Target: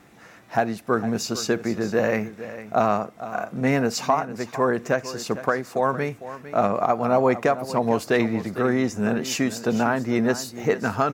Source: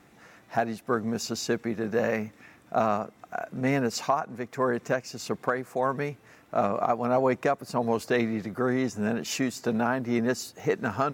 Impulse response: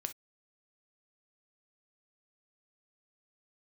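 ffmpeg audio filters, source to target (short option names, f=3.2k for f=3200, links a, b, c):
-filter_complex "[0:a]aecho=1:1:454:0.2,asplit=2[a][b];[1:a]atrim=start_sample=2205,asetrate=37926,aresample=44100[c];[b][c]afir=irnorm=-1:irlink=0,volume=-9dB[d];[a][d]amix=inputs=2:normalize=0,volume=2dB"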